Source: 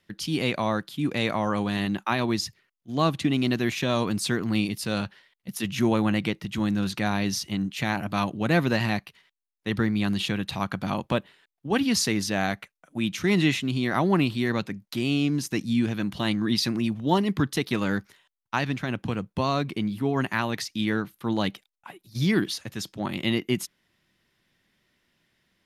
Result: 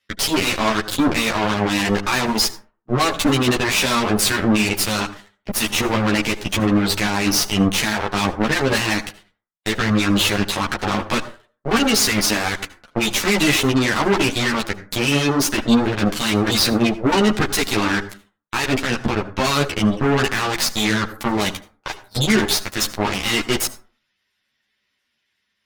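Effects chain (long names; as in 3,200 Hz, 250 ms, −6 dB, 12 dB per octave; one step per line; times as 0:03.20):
dynamic equaliser 350 Hz, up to +6 dB, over −38 dBFS, Q 2.3
gate on every frequency bin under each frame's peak −25 dB strong
tilt shelving filter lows −7 dB, about 780 Hz
in parallel at −2 dB: downward compressor, threshold −35 dBFS, peak gain reduction 18 dB
on the sum: leveller curve on the samples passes 3
brickwall limiter −13 dBFS, peak gain reduction 8 dB
notch comb filter 170 Hz
harmonic generator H 2 −8 dB, 5 −13 dB, 6 −21 dB, 7 −8 dB, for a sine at −10 dBFS
convolution reverb RT60 0.40 s, pre-delay 67 ms, DRR 14.5 dB
string-ensemble chorus
level +3 dB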